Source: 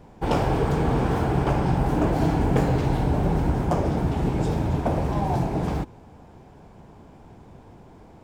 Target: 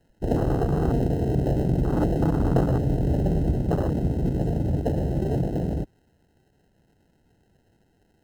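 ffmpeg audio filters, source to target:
-filter_complex "[0:a]acrossover=split=210|4700[a][b][c];[b]acrusher=samples=38:mix=1:aa=0.000001[d];[a][d][c]amix=inputs=3:normalize=0,afwtdn=0.0562"

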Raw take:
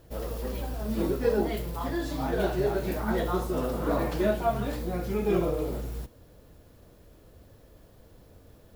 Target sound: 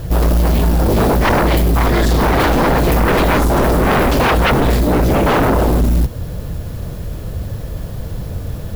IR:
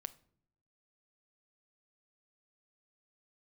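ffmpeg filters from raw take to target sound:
-filter_complex "[0:a]lowshelf=f=210:t=q:w=1.5:g=7,asplit=2[a][b];[b]acompressor=threshold=-32dB:ratio=6,volume=-3dB[c];[a][c]amix=inputs=2:normalize=0,aeval=exprs='0.237*sin(PI/2*3.98*val(0)/0.237)':c=same,volume=3dB"

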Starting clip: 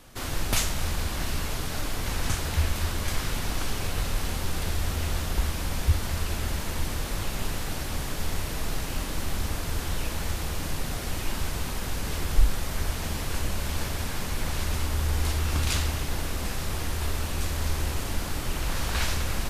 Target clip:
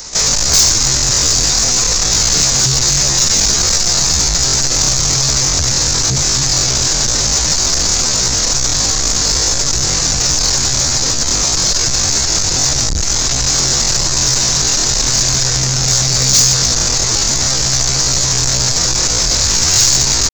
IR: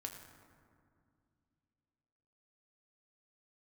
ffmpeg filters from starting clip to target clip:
-filter_complex "[0:a]bandreject=f=123.3:t=h:w=4,bandreject=f=246.6:t=h:w=4,bandreject=f=369.9:t=h:w=4,bandreject=f=493.2:t=h:w=4,bandreject=f=616.5:t=h:w=4,bandreject=f=739.8:t=h:w=4,bandreject=f=863.1:t=h:w=4,bandreject=f=986.4:t=h:w=4,bandreject=f=1.1097k:t=h:w=4,bandreject=f=1.233k:t=h:w=4,bandreject=f=1.3563k:t=h:w=4,bandreject=f=1.4796k:t=h:w=4,bandreject=f=1.6029k:t=h:w=4,bandreject=f=1.7262k:t=h:w=4,bandreject=f=1.8495k:t=h:w=4,bandreject=f=1.9728k:t=h:w=4,bandreject=f=2.0961k:t=h:w=4,bandreject=f=2.2194k:t=h:w=4,bandreject=f=2.3427k:t=h:w=4,bandreject=f=2.466k:t=h:w=4,acrossover=split=230[a][b];[b]acontrast=49[c];[a][c]amix=inputs=2:normalize=0,asetrate=78577,aresample=44100,atempo=0.561231,aresample=16000,asoftclip=type=tanh:threshold=-25dB,aresample=44100,asetrate=42292,aresample=44100,aexciter=amount=11.9:drive=1.2:freq=4.4k,aeval=exprs='0.596*sin(PI/2*2.24*val(0)/0.596)':c=same"

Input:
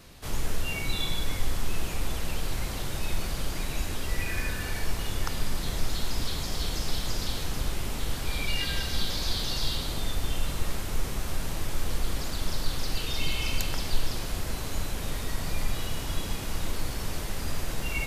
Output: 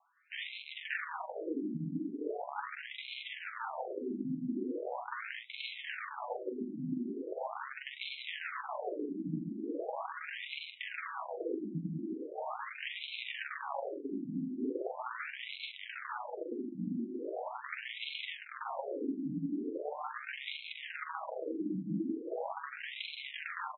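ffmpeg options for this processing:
-filter_complex "[0:a]acrossover=split=180|730|6400[a][b][c][d];[b]acontrast=83[e];[a][e][c][d]amix=inputs=4:normalize=0,afwtdn=0.0398,acompressor=threshold=-27dB:ratio=16,asetrate=28595,aresample=44100,atempo=1.54221,aeval=exprs='(mod(33.5*val(0)+1,2)-1)/33.5':c=same,flanger=delay=6.1:depth=2.1:regen=47:speed=0.12:shape=sinusoidal,atempo=0.76,asplit=2[f][g];[g]adelay=43,volume=-6dB[h];[f][h]amix=inputs=2:normalize=0,afftfilt=real='re*between(b*sr/1024,230*pow(3000/230,0.5+0.5*sin(2*PI*0.4*pts/sr))/1.41,230*pow(3000/230,0.5+0.5*sin(2*PI*0.4*pts/sr))*1.41)':imag='im*between(b*sr/1024,230*pow(3000/230,0.5+0.5*sin(2*PI*0.4*pts/sr))/1.41,230*pow(3000/230,0.5+0.5*sin(2*PI*0.4*pts/sr))*1.41)':win_size=1024:overlap=0.75,volume=9dB"

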